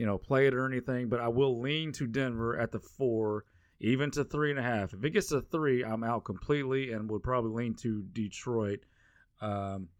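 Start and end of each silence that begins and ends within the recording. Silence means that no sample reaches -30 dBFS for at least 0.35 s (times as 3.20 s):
3.39–3.84 s
8.75–9.43 s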